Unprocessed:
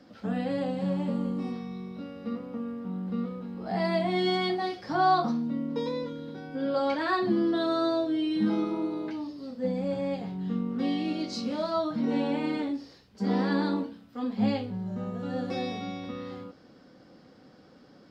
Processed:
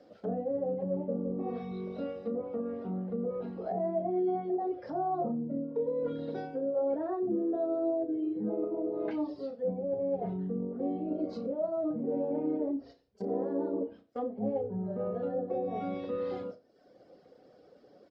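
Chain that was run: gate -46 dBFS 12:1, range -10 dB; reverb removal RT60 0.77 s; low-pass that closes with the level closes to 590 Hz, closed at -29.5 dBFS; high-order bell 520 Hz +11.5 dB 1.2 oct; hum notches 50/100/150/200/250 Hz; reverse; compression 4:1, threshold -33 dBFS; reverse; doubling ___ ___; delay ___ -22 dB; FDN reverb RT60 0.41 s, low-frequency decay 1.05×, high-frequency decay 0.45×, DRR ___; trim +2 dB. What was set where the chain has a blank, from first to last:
33 ms, -11.5 dB, 88 ms, 17.5 dB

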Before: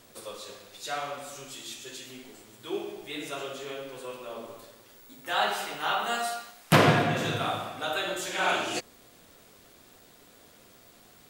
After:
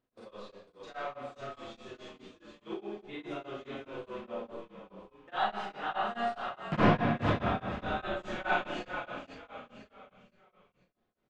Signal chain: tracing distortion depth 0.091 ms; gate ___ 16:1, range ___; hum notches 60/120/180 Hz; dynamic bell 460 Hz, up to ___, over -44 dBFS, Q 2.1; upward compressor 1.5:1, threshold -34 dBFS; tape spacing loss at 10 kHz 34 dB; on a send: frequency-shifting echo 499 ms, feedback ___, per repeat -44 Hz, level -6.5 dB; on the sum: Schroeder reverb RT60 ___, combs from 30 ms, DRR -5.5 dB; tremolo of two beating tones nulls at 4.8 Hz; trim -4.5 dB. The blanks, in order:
-43 dBFS, -39 dB, -5 dB, 38%, 0.31 s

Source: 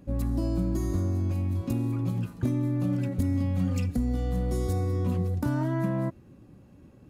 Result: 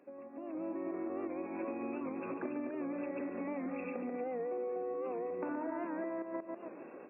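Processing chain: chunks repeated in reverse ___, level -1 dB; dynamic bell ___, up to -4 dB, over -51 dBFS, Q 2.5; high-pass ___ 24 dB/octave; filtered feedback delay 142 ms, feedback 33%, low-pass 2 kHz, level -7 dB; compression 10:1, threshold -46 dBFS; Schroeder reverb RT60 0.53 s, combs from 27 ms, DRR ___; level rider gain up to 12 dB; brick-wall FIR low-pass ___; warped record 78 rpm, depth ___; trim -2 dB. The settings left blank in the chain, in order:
183 ms, 1.5 kHz, 360 Hz, 19.5 dB, 2.7 kHz, 100 cents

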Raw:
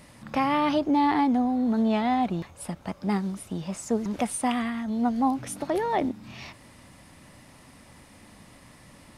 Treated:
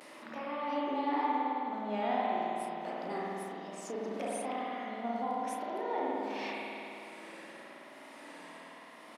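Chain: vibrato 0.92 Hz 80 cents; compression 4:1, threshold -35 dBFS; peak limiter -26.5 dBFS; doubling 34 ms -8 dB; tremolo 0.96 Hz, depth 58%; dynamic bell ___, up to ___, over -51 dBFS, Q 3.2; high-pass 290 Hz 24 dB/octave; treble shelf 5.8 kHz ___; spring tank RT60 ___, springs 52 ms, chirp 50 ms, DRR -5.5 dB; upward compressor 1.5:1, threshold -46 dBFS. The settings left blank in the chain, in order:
600 Hz, +3 dB, -6.5 dB, 3 s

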